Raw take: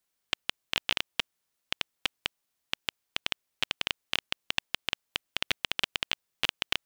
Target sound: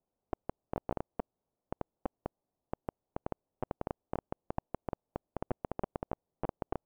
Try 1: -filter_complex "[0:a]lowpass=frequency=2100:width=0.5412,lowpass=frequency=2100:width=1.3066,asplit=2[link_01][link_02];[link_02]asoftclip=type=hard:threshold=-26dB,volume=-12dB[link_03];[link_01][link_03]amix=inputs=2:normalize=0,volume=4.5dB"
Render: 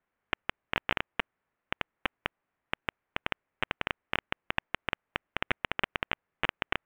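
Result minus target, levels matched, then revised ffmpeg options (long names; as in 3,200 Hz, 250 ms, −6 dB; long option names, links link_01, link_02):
2,000 Hz band +17.0 dB
-filter_complex "[0:a]lowpass=frequency=800:width=0.5412,lowpass=frequency=800:width=1.3066,asplit=2[link_01][link_02];[link_02]asoftclip=type=hard:threshold=-26dB,volume=-12dB[link_03];[link_01][link_03]amix=inputs=2:normalize=0,volume=4.5dB"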